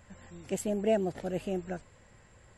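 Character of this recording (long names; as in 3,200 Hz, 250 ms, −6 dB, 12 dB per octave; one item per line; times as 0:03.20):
background noise floor −59 dBFS
spectral slope −5.5 dB per octave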